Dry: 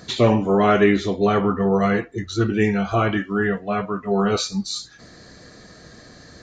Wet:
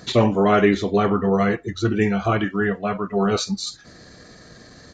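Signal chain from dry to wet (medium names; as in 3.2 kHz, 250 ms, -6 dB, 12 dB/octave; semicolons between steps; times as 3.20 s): tempo 1.3×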